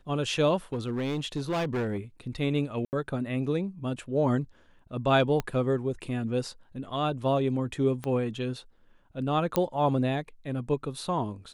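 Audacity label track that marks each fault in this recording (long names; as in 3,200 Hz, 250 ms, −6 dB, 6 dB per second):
0.730000	1.980000	clipping −25.5 dBFS
2.850000	2.930000	drop-out 79 ms
5.400000	5.400000	click −16 dBFS
8.040000	8.040000	click −20 dBFS
9.560000	9.560000	click −11 dBFS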